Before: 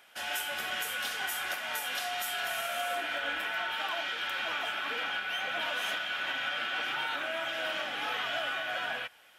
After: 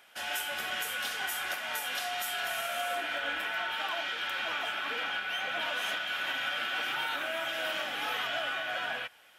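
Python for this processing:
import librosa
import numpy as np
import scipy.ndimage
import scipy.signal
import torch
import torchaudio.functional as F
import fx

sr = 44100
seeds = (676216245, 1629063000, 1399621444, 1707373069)

y = fx.high_shelf(x, sr, hz=10000.0, db=11.5, at=(6.07, 8.27))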